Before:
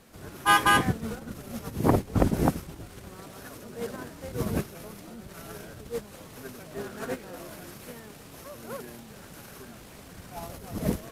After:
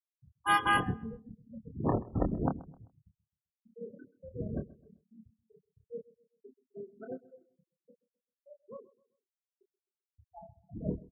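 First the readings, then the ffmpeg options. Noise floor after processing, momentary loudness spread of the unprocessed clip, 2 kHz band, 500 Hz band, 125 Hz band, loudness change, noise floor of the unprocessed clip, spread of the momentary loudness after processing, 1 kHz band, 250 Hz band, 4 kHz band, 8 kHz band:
under -85 dBFS, 21 LU, -7.0 dB, -8.0 dB, -7.5 dB, -5.0 dB, -48 dBFS, 22 LU, -6.0 dB, -7.5 dB, n/a, under -10 dB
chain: -filter_complex "[0:a]afftfilt=real='re*gte(hypot(re,im),0.0708)':imag='im*gte(hypot(re,im),0.0708)':win_size=1024:overlap=0.75,asplit=2[a][b];[b]adelay=27,volume=-6dB[c];[a][c]amix=inputs=2:normalize=0,asplit=2[d][e];[e]adelay=130,lowpass=f=1.7k:p=1,volume=-20dB,asplit=2[f][g];[g]adelay=130,lowpass=f=1.7k:p=1,volume=0.4,asplit=2[h][i];[i]adelay=130,lowpass=f=1.7k:p=1,volume=0.4[j];[d][f][h][j]amix=inputs=4:normalize=0,volume=-8dB"

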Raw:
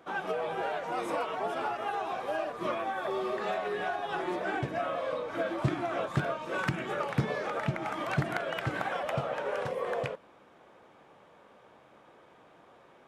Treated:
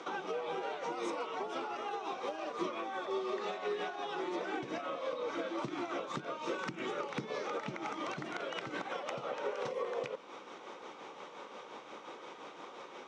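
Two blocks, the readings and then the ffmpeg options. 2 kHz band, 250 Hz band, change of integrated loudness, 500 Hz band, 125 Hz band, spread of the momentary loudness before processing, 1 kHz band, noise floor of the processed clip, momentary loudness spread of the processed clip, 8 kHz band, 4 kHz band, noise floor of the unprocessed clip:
-7.0 dB, -4.5 dB, -6.5 dB, -5.0 dB, -16.5 dB, 2 LU, -5.5 dB, -51 dBFS, 11 LU, -1.0 dB, -2.0 dB, -59 dBFS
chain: -filter_complex "[0:a]equalizer=f=1.7k:t=o:w=0.25:g=-12.5,acompressor=threshold=-41dB:ratio=6,tremolo=f=5.7:d=0.46,highpass=320,equalizer=f=660:t=q:w=4:g=-9,equalizer=f=1.8k:t=q:w=4:g=4,equalizer=f=3.8k:t=q:w=4:g=3,equalizer=f=5.9k:t=q:w=4:g=7,lowpass=f=7.4k:w=0.5412,lowpass=f=7.4k:w=1.3066,acrossover=split=470[a][b];[b]acompressor=threshold=-52dB:ratio=6[c];[a][c]amix=inputs=2:normalize=0,volume=13.5dB"

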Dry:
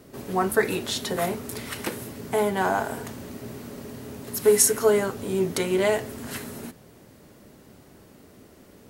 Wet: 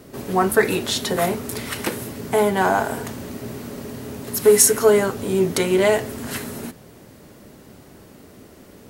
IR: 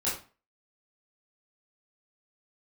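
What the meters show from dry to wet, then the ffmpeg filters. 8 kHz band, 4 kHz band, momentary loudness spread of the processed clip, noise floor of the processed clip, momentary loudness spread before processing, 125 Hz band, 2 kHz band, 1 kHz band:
+5.0 dB, +5.5 dB, 19 LU, -46 dBFS, 19 LU, +5.5 dB, +5.0 dB, +5.5 dB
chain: -af "acontrast=39"

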